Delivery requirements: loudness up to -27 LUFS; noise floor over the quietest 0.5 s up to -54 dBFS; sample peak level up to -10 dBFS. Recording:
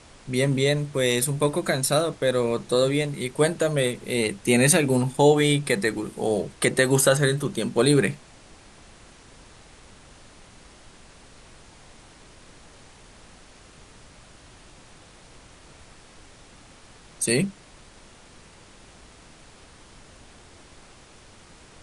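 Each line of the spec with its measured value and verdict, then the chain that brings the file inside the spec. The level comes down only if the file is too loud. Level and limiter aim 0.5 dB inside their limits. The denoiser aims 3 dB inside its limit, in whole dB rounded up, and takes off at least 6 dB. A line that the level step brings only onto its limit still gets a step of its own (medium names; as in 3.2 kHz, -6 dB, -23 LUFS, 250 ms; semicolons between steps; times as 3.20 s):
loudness -22.5 LUFS: fail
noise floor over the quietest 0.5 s -50 dBFS: fail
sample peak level -3.0 dBFS: fail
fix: trim -5 dB; peak limiter -10.5 dBFS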